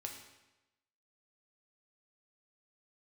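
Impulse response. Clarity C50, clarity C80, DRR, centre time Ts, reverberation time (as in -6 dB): 5.5 dB, 8.0 dB, 1.0 dB, 32 ms, 1.0 s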